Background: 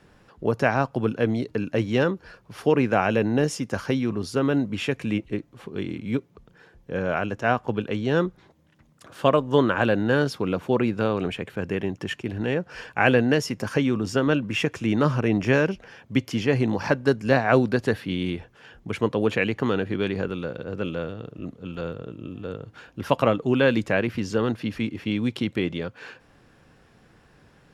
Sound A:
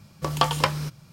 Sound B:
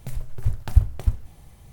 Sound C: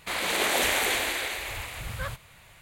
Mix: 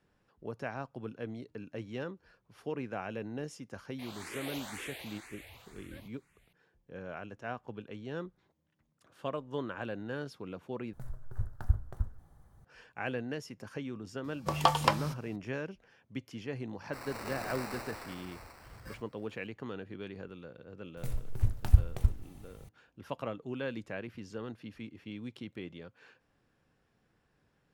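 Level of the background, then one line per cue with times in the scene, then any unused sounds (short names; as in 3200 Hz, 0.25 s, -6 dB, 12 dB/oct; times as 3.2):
background -17.5 dB
3.92 add C -15.5 dB + endless phaser +2 Hz
10.93 replace with B -11.5 dB + resonant high shelf 1900 Hz -7.5 dB, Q 3
14.24 add A -7 dB + bell 780 Hz +6.5 dB 1.1 oct
16.86 add C -16 dB + sample-rate reducer 3300 Hz
20.97 add B -5 dB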